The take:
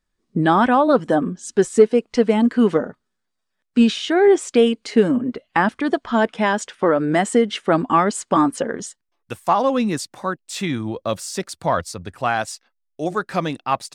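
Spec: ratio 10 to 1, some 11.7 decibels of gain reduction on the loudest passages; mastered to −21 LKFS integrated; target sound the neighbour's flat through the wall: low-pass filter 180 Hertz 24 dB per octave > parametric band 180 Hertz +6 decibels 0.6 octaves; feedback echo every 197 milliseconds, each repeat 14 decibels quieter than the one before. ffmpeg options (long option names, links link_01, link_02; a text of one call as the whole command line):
ffmpeg -i in.wav -af "acompressor=threshold=-18dB:ratio=10,lowpass=frequency=180:width=0.5412,lowpass=frequency=180:width=1.3066,equalizer=frequency=180:width_type=o:width=0.6:gain=6,aecho=1:1:197|394:0.2|0.0399,volume=12.5dB" out.wav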